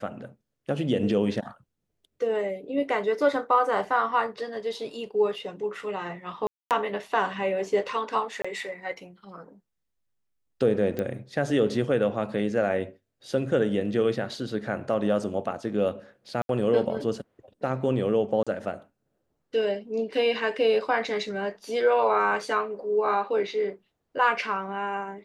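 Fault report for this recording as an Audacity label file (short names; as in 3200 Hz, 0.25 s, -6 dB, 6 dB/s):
6.470000	6.710000	gap 0.238 s
8.420000	8.450000	gap 25 ms
10.990000	10.990000	pop -17 dBFS
16.420000	16.490000	gap 72 ms
18.430000	18.470000	gap 36 ms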